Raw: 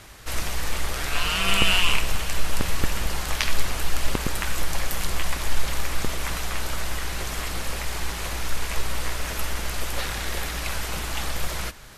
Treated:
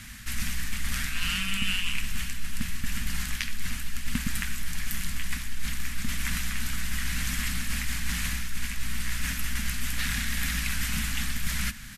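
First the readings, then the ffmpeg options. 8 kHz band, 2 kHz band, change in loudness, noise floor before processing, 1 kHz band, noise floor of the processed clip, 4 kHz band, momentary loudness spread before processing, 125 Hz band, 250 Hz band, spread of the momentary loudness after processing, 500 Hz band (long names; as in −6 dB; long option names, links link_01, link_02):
−2.0 dB, −3.0 dB, −4.0 dB, −31 dBFS, −11.5 dB, −35 dBFS, −5.5 dB, 8 LU, −2.5 dB, −1.0 dB, 6 LU, −23.0 dB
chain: -af "areverse,acompressor=threshold=-26dB:ratio=6,areverse,firequalizer=gain_entry='entry(140,0);entry(240,8);entry(350,-24);entry(1700,2);entry(3900,-2);entry(7800,1)':delay=0.05:min_phase=1,volume=3dB"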